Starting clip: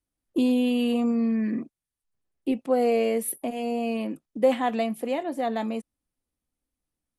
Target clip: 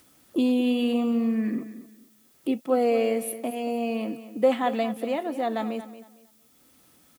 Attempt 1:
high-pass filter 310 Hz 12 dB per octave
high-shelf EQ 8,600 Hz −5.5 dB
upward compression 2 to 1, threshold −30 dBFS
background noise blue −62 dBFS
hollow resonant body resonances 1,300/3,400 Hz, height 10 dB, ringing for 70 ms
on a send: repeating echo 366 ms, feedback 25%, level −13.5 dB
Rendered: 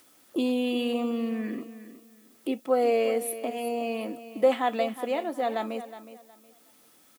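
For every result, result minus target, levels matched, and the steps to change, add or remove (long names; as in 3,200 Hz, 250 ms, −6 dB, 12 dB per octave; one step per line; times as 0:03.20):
echo 137 ms late; 125 Hz band −4.0 dB
change: repeating echo 229 ms, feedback 25%, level −13.5 dB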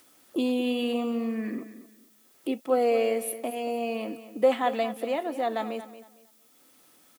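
125 Hz band −4.0 dB
change: high-pass filter 140 Hz 12 dB per octave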